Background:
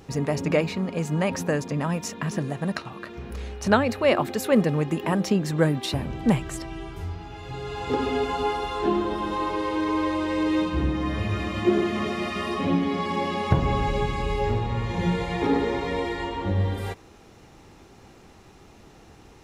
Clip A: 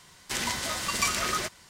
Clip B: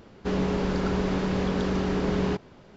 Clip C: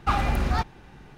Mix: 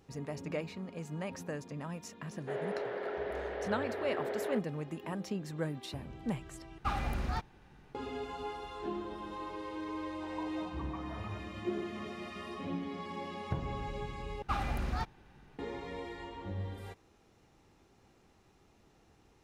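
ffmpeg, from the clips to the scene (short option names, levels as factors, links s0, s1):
-filter_complex "[3:a]asplit=2[s0][s1];[0:a]volume=0.178[s2];[2:a]highpass=f=400:w=0.5412,highpass=f=400:w=1.3066,equalizer=f=440:t=q:w=4:g=5,equalizer=f=660:t=q:w=4:g=7,equalizer=f=1100:t=q:w=4:g=-7,equalizer=f=1800:t=q:w=4:g=6,equalizer=f=2600:t=q:w=4:g=-6,lowpass=f=3000:w=0.5412,lowpass=f=3000:w=1.3066[s3];[1:a]asuperpass=centerf=820:order=4:qfactor=2.5[s4];[s2]asplit=3[s5][s6][s7];[s5]atrim=end=6.784[s8];[s0]atrim=end=1.17,asetpts=PTS-STARTPTS,volume=0.299[s9];[s6]atrim=start=7.946:end=14.424[s10];[s1]atrim=end=1.17,asetpts=PTS-STARTPTS,volume=0.299[s11];[s7]atrim=start=15.586[s12];[s3]atrim=end=2.76,asetpts=PTS-STARTPTS,volume=0.355,afade=t=in:d=0.004:c=hsin,afade=t=out:st=2.756:d=0.004:c=hsin,adelay=2220[s13];[s4]atrim=end=1.69,asetpts=PTS-STARTPTS,volume=0.473,afade=t=in:d=0.004:c=hsin,afade=t=out:st=1.686:d=0.004:c=hsin,adelay=9910[s14];[s8][s9]acrossfade=d=0.004:c1=hsin:c2=hsin[s15];[s15][s10]acrossfade=d=0.004:c1=hsin:c2=hsin[s16];[s16][s11]acrossfade=d=0.004:c1=hsin:c2=hsin[s17];[s17][s12]acrossfade=d=0.004:c1=hsin:c2=hsin[s18];[s18][s13][s14]amix=inputs=3:normalize=0"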